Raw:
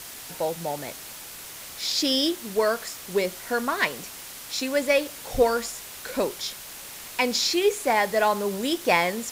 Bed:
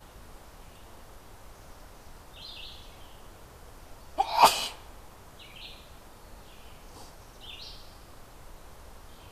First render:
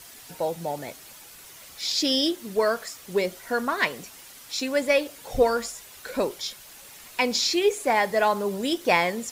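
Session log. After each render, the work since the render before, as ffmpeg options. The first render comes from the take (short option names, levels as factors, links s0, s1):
-af "afftdn=nr=8:nf=-41"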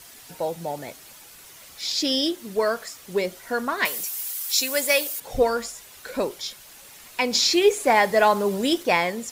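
-filter_complex "[0:a]asettb=1/sr,asplit=3[s0][s1][s2];[s0]atrim=end=3.854[s3];[s1]atrim=start=3.85:end=5.2,asetpts=PTS-STARTPTS,afade=t=in:d=0.004:c=qsin,afade=t=out:st=1.346:d=0.004:c=qsin,aemphasis=mode=production:type=riaa[s4];[s2]atrim=start=5.196[s5];[s3][s4]acrossfade=d=0.004:c1=hsin:c2=qsin[s6];[s6][s5]acrossfade=d=0.004:c1=qsin:c2=hsin,asplit=3[s7][s8][s9];[s7]atrim=end=7.332[s10];[s8]atrim=start=7.328:end=8.832,asetpts=PTS-STARTPTS,volume=1.58[s11];[s9]atrim=start=8.828[s12];[s10][s11]acrossfade=d=0.004:c1=hsin:c2=hsin[s13];[s13][s12]acrossfade=d=0.004:c1=hsin:c2=hsin"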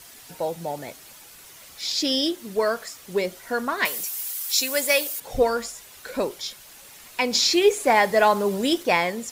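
-af anull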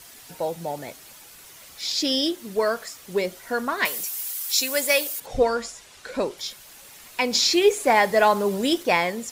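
-filter_complex "[0:a]asettb=1/sr,asplit=3[s0][s1][s2];[s0]atrim=end=5.264[s3];[s1]atrim=start=5.26:end=6.38,asetpts=PTS-STARTPTS,afade=t=in:d=0.004:c=qsin,afade=t=out:st=1.116:d=0.004:c=qsin,lowpass=8100[s4];[s2]atrim=start=6.376[s5];[s3][s4]acrossfade=d=0.004:c1=hsin:c2=qsin[s6];[s6][s5]acrossfade=d=0.004:c1=qsin:c2=hsin"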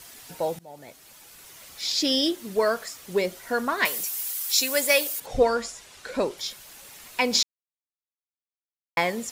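-filter_complex "[0:a]asplit=4[s0][s1][s2][s3];[s0]atrim=end=0.59,asetpts=PTS-STARTPTS,afade=t=out:st=0.586:d=0.004:c=hsin:silence=0.0794328[s4];[s1]atrim=start=0.59:end=7.43,asetpts=PTS-STARTPTS,afade=t=in:d=1.35:c=qsin:silence=0.0794328,afade=t=out:st=6.836:d=0.004:c=hsin[s5];[s2]atrim=start=7.43:end=8.97,asetpts=PTS-STARTPTS,volume=0[s6];[s3]atrim=start=8.97,asetpts=PTS-STARTPTS,afade=t=in:d=0.004:c=hsin[s7];[s4][s5][s6][s7]concat=n=4:v=0:a=1"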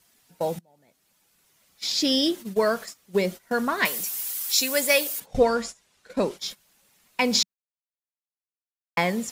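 -af "agate=range=0.141:threshold=0.0178:ratio=16:detection=peak,equalizer=f=190:t=o:w=0.69:g=8"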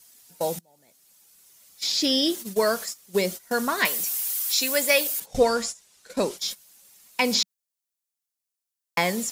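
-filter_complex "[0:a]acrossover=split=3600[s0][s1];[s1]acompressor=threshold=0.0178:ratio=4:attack=1:release=60[s2];[s0][s2]amix=inputs=2:normalize=0,bass=f=250:g=-3,treble=f=4000:g=11"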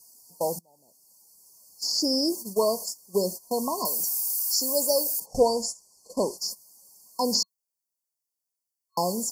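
-af "lowshelf=f=270:g=-3.5,afftfilt=real='re*(1-between(b*sr/4096,1100,4300))':imag='im*(1-between(b*sr/4096,1100,4300))':win_size=4096:overlap=0.75"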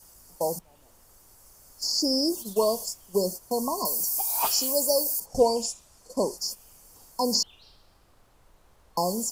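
-filter_complex "[1:a]volume=0.282[s0];[0:a][s0]amix=inputs=2:normalize=0"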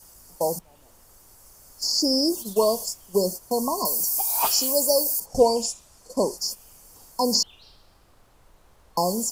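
-af "volume=1.41"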